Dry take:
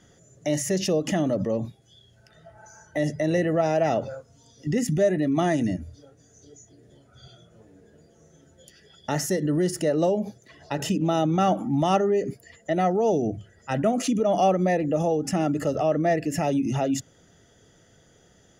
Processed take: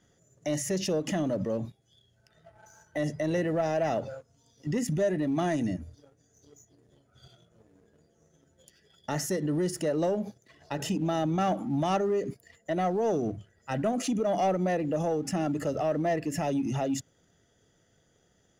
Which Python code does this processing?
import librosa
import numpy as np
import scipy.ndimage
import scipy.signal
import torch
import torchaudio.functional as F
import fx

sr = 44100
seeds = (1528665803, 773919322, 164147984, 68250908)

y = fx.leveller(x, sr, passes=1)
y = F.gain(torch.from_numpy(y), -8.0).numpy()